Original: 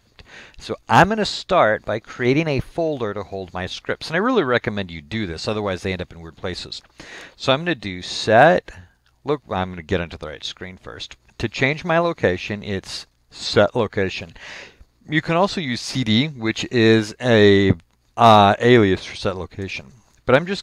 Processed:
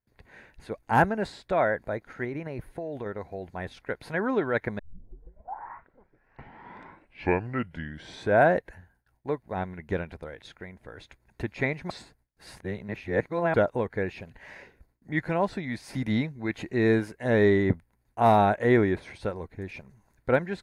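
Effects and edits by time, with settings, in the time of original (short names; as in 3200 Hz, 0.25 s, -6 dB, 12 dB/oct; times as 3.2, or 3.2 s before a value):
2.24–3.06 compressor, threshold -22 dBFS
4.79 tape start 3.73 s
11.9–13.54 reverse
whole clip: gate with hold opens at -48 dBFS; band shelf 4500 Hz -12.5 dB; notch 1200 Hz, Q 5.4; gain -8 dB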